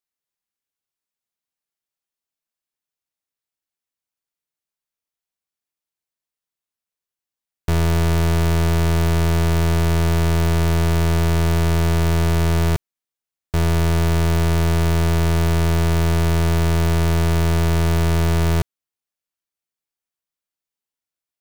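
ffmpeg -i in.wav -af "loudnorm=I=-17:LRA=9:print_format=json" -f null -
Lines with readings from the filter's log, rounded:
"input_i" : "-19.2",
"input_tp" : "-14.4",
"input_lra" : "14.0",
"input_thresh" : "-29.3",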